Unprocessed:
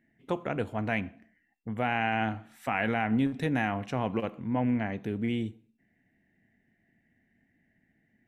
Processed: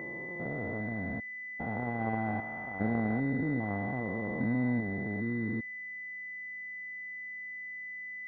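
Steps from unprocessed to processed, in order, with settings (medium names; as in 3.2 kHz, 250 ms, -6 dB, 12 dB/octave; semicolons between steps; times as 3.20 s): spectrogram pixelated in time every 400 ms; class-D stage that switches slowly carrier 2 kHz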